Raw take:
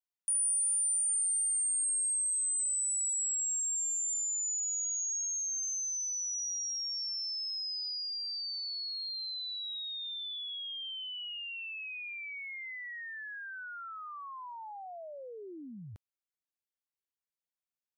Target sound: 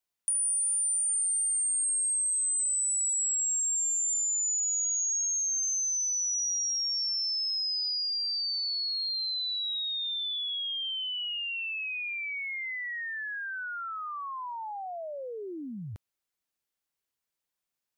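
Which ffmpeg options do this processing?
ffmpeg -i in.wav -af "acompressor=threshold=-34dB:ratio=6,volume=7dB" out.wav

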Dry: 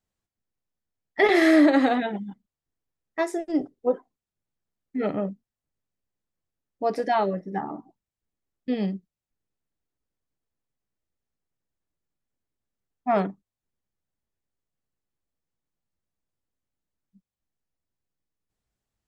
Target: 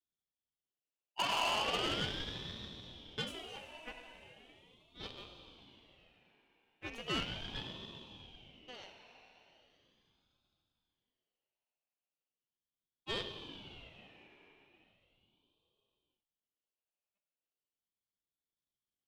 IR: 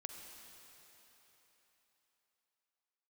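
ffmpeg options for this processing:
-filter_complex "[0:a]aeval=exprs='if(lt(val(0),0),0.251*val(0),val(0))':channel_layout=same,highpass=frequency=1600:width_type=q:width=4[link_01];[1:a]atrim=start_sample=2205[link_02];[link_01][link_02]afir=irnorm=-1:irlink=0,aeval=exprs='(tanh(22.4*val(0)+0.65)-tanh(0.65))/22.4':channel_layout=same,aeval=exprs='val(0)*sin(2*PI*1400*n/s+1400*0.3/0.38*sin(2*PI*0.38*n/s))':channel_layout=same"

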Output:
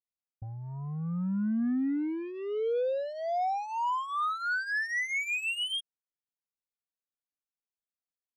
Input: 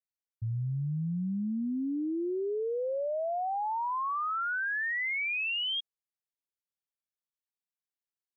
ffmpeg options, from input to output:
ffmpeg -i in.wav -af "aeval=exprs='0.0376*(cos(1*acos(clip(val(0)/0.0376,-1,1)))-cos(1*PI/2))+0.00266*(cos(7*acos(clip(val(0)/0.0376,-1,1)))-cos(7*PI/2))':channel_layout=same,adynamicsmooth=sensitivity=5:basefreq=1500,aecho=1:1:4.1:0.59" out.wav

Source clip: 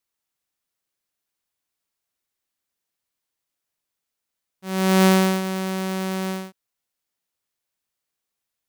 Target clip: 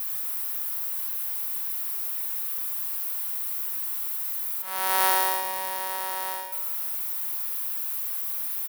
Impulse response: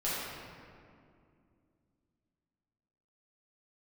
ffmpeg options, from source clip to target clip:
-filter_complex "[0:a]aeval=exprs='val(0)+0.5*0.0211*sgn(val(0))':channel_layout=same,highpass=frequency=960:width_type=q:width=1.8,aecho=1:1:108:0.376,asplit=2[link_01][link_02];[1:a]atrim=start_sample=2205,lowpass=8100[link_03];[link_02][link_03]afir=irnorm=-1:irlink=0,volume=-14.5dB[link_04];[link_01][link_04]amix=inputs=2:normalize=0,aexciter=amount=5.3:drive=7.3:freq=9600,volume=-7dB"

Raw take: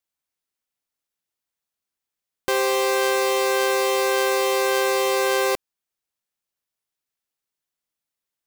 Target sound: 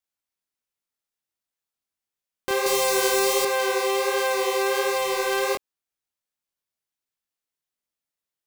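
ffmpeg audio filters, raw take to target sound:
ffmpeg -i in.wav -filter_complex "[0:a]asplit=3[link_01][link_02][link_03];[link_01]afade=type=out:start_time=4.95:duration=0.02[link_04];[link_02]asubboost=boost=2.5:cutoff=170,afade=type=in:start_time=4.95:duration=0.02,afade=type=out:start_time=5.41:duration=0.02[link_05];[link_03]afade=type=in:start_time=5.41:duration=0.02[link_06];[link_04][link_05][link_06]amix=inputs=3:normalize=0,flanger=delay=19:depth=6.6:speed=1.4,asettb=1/sr,asplit=3[link_07][link_08][link_09];[link_07]atrim=end=2.664[link_10];[link_08]atrim=start=2.66:end=3.45,asetpts=PTS-STARTPTS,afade=type=in:duration=0.004:curve=qsin,afade=type=out:start_time=0.786:duration=0.004:curve=qsin,bass=frequency=250:gain=12,treble=frequency=4000:gain=9[link_11];[link_09]atrim=start=3.446[link_12];[link_10][link_11]acrossfade=duration=0.004:curve1=hsin:curve2=qsin[link_13];[link_13][link_12]acrossfade=duration=0.004:curve1=qsin:curve2=hsin" out.wav

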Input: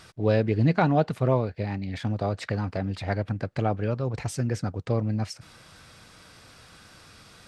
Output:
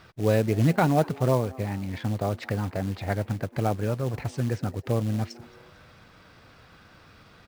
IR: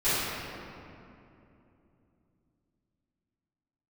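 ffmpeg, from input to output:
-filter_complex "[0:a]adynamicsmooth=sensitivity=4:basefreq=3500,asplit=4[link_01][link_02][link_03][link_04];[link_02]adelay=224,afreqshift=130,volume=-23dB[link_05];[link_03]adelay=448,afreqshift=260,volume=-29.6dB[link_06];[link_04]adelay=672,afreqshift=390,volume=-36.1dB[link_07];[link_01][link_05][link_06][link_07]amix=inputs=4:normalize=0,acrusher=bits=5:mode=log:mix=0:aa=0.000001"

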